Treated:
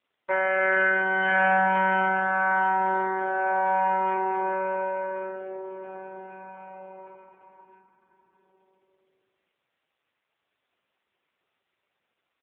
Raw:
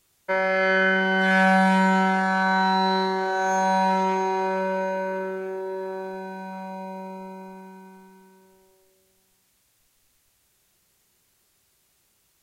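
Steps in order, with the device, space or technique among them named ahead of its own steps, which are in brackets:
satellite phone (band-pass filter 370–3,100 Hz; single-tap delay 612 ms −17.5 dB; AMR narrowband 5.9 kbit/s 8,000 Hz)

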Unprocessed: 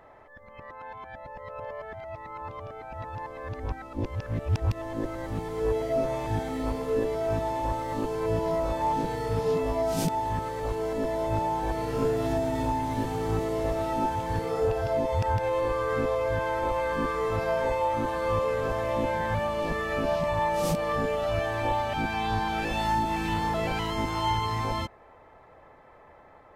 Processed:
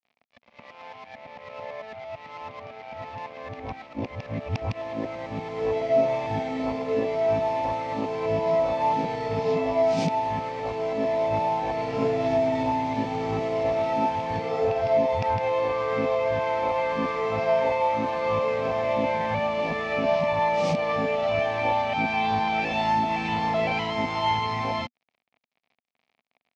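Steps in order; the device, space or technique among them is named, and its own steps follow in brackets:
blown loudspeaker (dead-zone distortion −45.5 dBFS; loudspeaker in its box 130–5,600 Hz, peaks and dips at 240 Hz +5 dB, 340 Hz −7 dB, 710 Hz +7 dB, 1,500 Hz −7 dB, 2,300 Hz +8 dB)
level +2.5 dB

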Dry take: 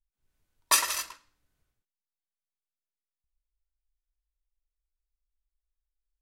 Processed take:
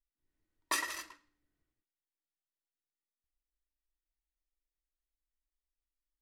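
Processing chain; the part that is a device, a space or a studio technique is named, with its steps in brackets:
inside a helmet (high-shelf EQ 5,300 Hz −7.5 dB; hollow resonant body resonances 310/1,900 Hz, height 13 dB, ringing for 40 ms)
level −8.5 dB

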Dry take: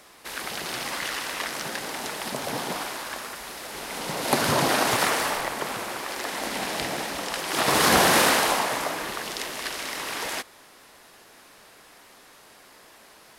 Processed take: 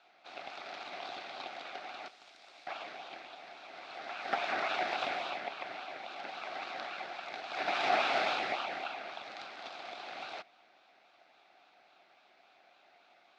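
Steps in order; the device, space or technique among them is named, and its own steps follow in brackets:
0:02.08–0:02.67: first difference
voice changer toy (ring modulator whose carrier an LFO sweeps 1,500 Hz, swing 40%, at 3.6 Hz; loudspeaker in its box 450–3,700 Hz, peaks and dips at 470 Hz −8 dB, 730 Hz +10 dB, 1,000 Hz −8 dB, 1,800 Hz −7 dB, 3,000 Hz −9 dB)
level −5 dB

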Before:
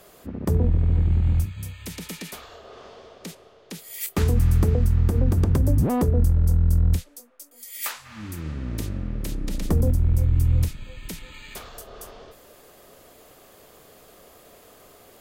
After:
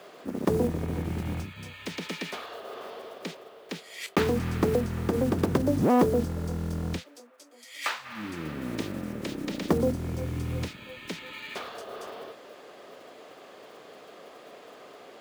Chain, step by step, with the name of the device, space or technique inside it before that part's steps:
early digital voice recorder (band-pass filter 250–3,900 Hz; one scale factor per block 5 bits)
level +4.5 dB

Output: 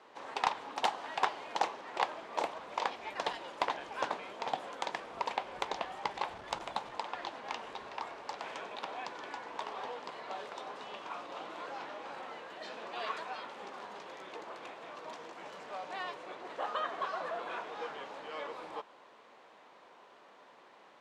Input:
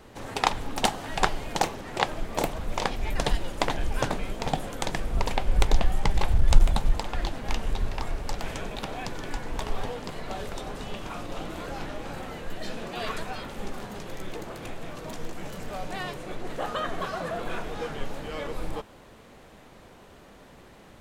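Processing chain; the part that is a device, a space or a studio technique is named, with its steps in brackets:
intercom (band-pass filter 450–4,800 Hz; parametric band 1,000 Hz +6 dB 0.52 octaves; soft clipping −10.5 dBFS, distortion −16 dB)
level −6 dB

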